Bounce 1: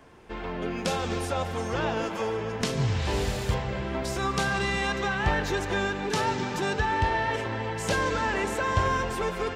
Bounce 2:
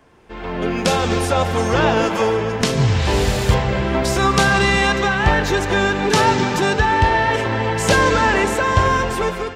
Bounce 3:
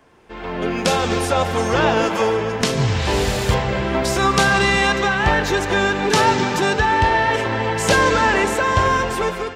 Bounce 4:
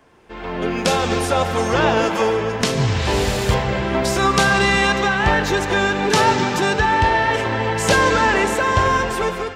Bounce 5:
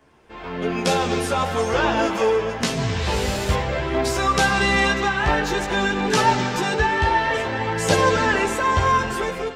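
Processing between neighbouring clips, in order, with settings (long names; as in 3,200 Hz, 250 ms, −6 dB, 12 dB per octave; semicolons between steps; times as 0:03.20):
automatic gain control gain up to 14 dB
low-shelf EQ 180 Hz −4.5 dB
convolution reverb RT60 1.9 s, pre-delay 45 ms, DRR 16.5 dB
multi-voice chorus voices 2, 0.25 Hz, delay 14 ms, depth 2.5 ms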